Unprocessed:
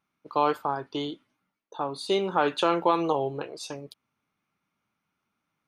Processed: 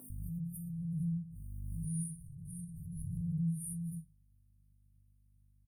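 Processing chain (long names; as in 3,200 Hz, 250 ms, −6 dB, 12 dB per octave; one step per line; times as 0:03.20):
random phases in long frames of 200 ms
brickwall limiter −21.5 dBFS, peak gain reduction 10.5 dB
phase-vocoder pitch shift with formants kept +3 semitones
parametric band 2,000 Hz +14 dB 2.7 octaves
brick-wall band-stop 180–8,700 Hz
mains hum 50 Hz, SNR 31 dB
low-shelf EQ 100 Hz +10.5 dB
multiband delay without the direct sound highs, lows 100 ms, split 290 Hz
convolution reverb, pre-delay 3 ms, DRR 0.5 dB
background raised ahead of every attack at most 21 dB per second
level +2 dB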